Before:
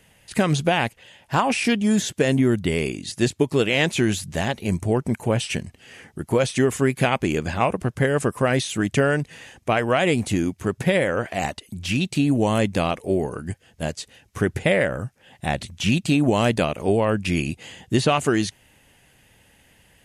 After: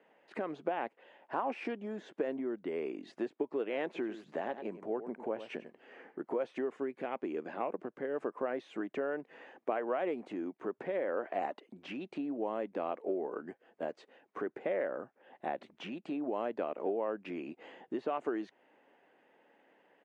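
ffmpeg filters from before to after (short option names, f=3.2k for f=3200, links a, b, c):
-filter_complex "[0:a]asplit=3[a][b][c];[a]afade=t=out:st=3.94:d=0.02[d];[b]aecho=1:1:95:0.211,afade=t=in:st=3.94:d=0.02,afade=t=out:st=6.2:d=0.02[e];[c]afade=t=in:st=6.2:d=0.02[f];[d][e][f]amix=inputs=3:normalize=0,asettb=1/sr,asplit=3[g][h][i];[g]atrim=end=6.764[j];[h]atrim=start=6.76:end=8.18,asetpts=PTS-STARTPTS,afade=t=in:d=0.004:c=qsin,afade=t=out:st=1.416:d=0.004:c=qsin,equalizer=f=950:w=0.65:g=-5[k];[i]atrim=start=8.176[l];[j][k]acrossfade=d=0.004:c1=hsin:c2=qsin[m];[m][l]acrossfade=d=0.004:c1=qsin:c2=hsin,lowpass=1.2k,acompressor=threshold=-27dB:ratio=5,highpass=f=300:w=0.5412,highpass=f=300:w=1.3066,volume=-2.5dB"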